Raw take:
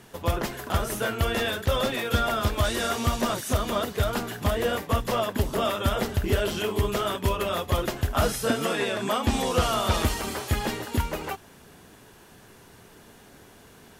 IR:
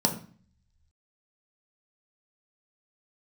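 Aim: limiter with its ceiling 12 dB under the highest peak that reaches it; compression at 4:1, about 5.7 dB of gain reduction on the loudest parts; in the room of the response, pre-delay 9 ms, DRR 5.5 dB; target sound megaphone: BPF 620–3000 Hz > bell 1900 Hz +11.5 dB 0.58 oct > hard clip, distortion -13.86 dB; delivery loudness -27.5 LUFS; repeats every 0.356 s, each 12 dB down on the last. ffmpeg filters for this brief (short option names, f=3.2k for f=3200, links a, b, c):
-filter_complex "[0:a]acompressor=threshold=-25dB:ratio=4,alimiter=level_in=3dB:limit=-24dB:level=0:latency=1,volume=-3dB,aecho=1:1:356|712|1068:0.251|0.0628|0.0157,asplit=2[a][b];[1:a]atrim=start_sample=2205,adelay=9[c];[b][c]afir=irnorm=-1:irlink=0,volume=-16dB[d];[a][d]amix=inputs=2:normalize=0,highpass=620,lowpass=3k,equalizer=f=1.9k:t=o:w=0.58:g=11.5,asoftclip=type=hard:threshold=-31.5dB,volume=9dB"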